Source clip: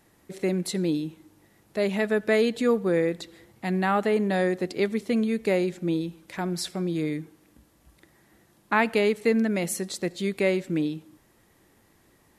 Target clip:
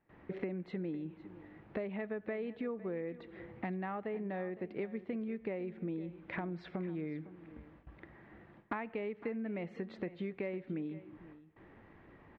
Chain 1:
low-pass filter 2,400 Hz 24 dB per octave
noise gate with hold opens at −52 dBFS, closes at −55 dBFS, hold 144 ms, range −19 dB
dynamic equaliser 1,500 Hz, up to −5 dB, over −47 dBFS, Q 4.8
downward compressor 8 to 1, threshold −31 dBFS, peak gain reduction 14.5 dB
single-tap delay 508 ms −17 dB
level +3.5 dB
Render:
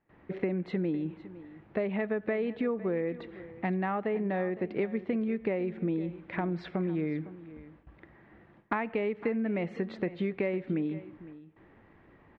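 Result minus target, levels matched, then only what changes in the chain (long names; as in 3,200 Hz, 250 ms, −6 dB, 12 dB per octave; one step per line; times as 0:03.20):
downward compressor: peak gain reduction −8.5 dB
change: downward compressor 8 to 1, threshold −40.5 dBFS, peak gain reduction 22.5 dB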